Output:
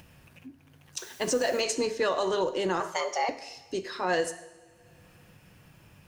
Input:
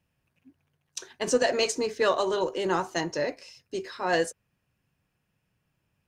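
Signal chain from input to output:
0:02.80–0:03.29: frequency shifter +240 Hz
coupled-rooms reverb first 0.79 s, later 2.1 s, from −27 dB, DRR 11.5 dB
in parallel at −2.5 dB: upward compression, threshold −27 dBFS
on the sum: brickwall limiter −13 dBFS, peak gain reduction 7 dB
0:00.98–0:01.61: bit-depth reduction 8 bits, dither triangular
level −4.5 dB

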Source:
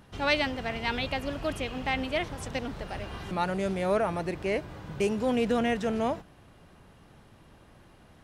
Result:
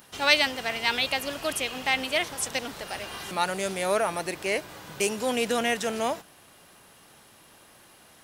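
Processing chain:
RIAA equalisation recording
level +3 dB

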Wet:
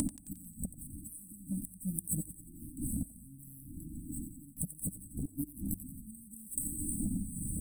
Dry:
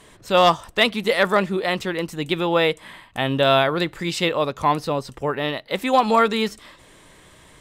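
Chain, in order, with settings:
running median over 3 samples
wind on the microphone 430 Hz −23 dBFS
gate with flip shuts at −13 dBFS, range −29 dB
dynamic equaliser 190 Hz, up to +6 dB, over −47 dBFS, Q 4.6
in parallel at +2 dB: upward compression, threshold −31 dBFS
on the sum: linear-phase brick-wall band-stop 310–7,800 Hz
hum removal 50.38 Hz, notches 2
downward compressor 6 to 1, threshold −27 dBFS, peak gain reduction 14.5 dB
bass and treble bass −11 dB, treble +14 dB
on a send: feedback echo with a high-pass in the loop 89 ms, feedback 58%, high-pass 1,000 Hz, level −10.5 dB
on the sum: flanger whose copies keep moving one way falling 0.74 Hz
level +6 dB

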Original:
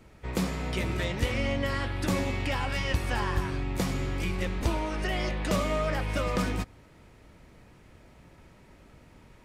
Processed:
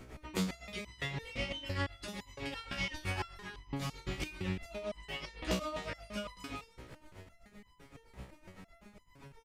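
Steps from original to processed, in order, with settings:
dynamic equaliser 3,700 Hz, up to +7 dB, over −50 dBFS, Q 0.79
downward compressor 6 to 1, threshold −37 dBFS, peak gain reduction 15 dB
amplitude tremolo 7.8 Hz, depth 84%
on a send: single-tap delay 310 ms −20 dB
on the sum: step-sequenced resonator 5.9 Hz 63–1,000 Hz
level +15 dB

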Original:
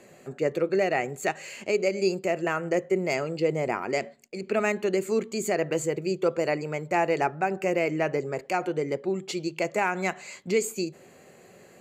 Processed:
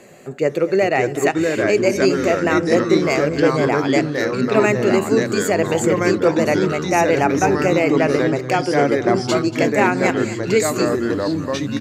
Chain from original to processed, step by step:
delay with pitch and tempo change per echo 495 ms, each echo −3 semitones, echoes 3
on a send: single-tap delay 236 ms −16.5 dB
on the sum: level +7.5 dB

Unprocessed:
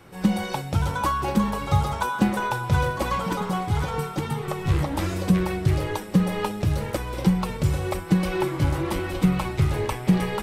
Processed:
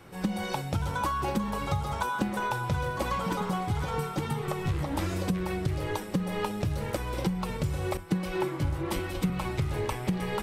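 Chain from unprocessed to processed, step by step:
downward compressor 6 to 1, threshold −24 dBFS, peak gain reduction 10.5 dB
0:07.97–0:09.30: multiband upward and downward expander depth 100%
level −1.5 dB

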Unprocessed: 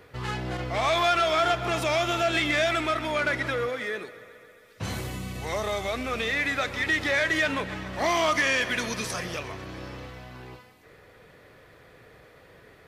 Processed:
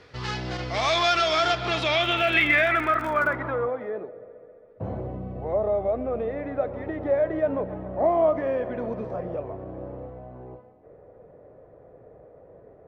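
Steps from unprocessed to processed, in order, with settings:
low-pass filter sweep 5,200 Hz → 620 Hz, 0:01.47–0:04.13
0:01.99–0:03.34: surface crackle 94 per second −32 dBFS

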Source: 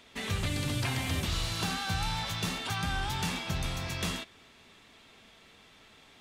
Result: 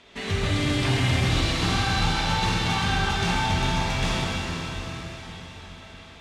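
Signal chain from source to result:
high-frequency loss of the air 63 metres
flutter between parallel walls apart 8.3 metres, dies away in 0.32 s
dense smooth reverb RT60 5 s, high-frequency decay 0.95×, DRR −4.5 dB
level +3.5 dB

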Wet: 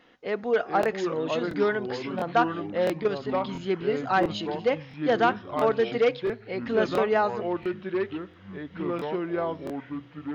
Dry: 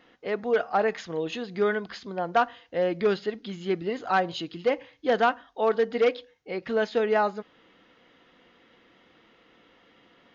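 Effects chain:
0:02.93–0:03.39: output level in coarse steps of 10 dB
delay with pitch and tempo change per echo 363 ms, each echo −4 semitones, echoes 3, each echo −6 dB
regular buffer underruns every 0.68 s, samples 1,024, repeat, from 0:00.81

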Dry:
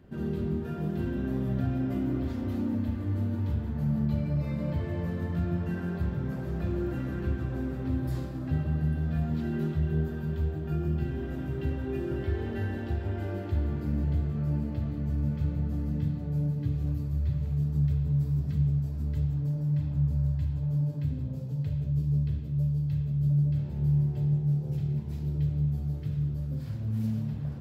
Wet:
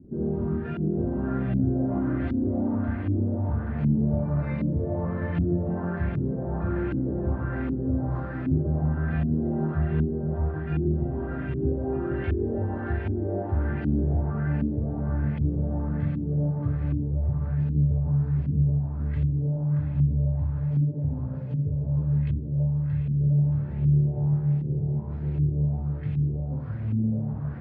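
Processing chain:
delay with a band-pass on its return 607 ms, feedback 68%, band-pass 1,100 Hz, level −3.5 dB
auto-filter low-pass saw up 1.3 Hz 260–2,700 Hz
level +2.5 dB

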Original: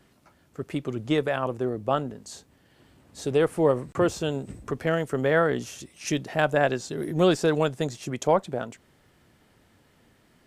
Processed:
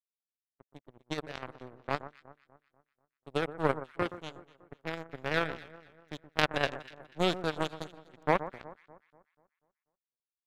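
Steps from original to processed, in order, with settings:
power curve on the samples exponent 3
downward expander −59 dBFS
in parallel at −4.5 dB: hard clipping −23.5 dBFS, distortion −7 dB
on the sum: delay that swaps between a low-pass and a high-pass 122 ms, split 1,600 Hz, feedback 64%, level −13 dB
one half of a high-frequency compander decoder only
level +2 dB

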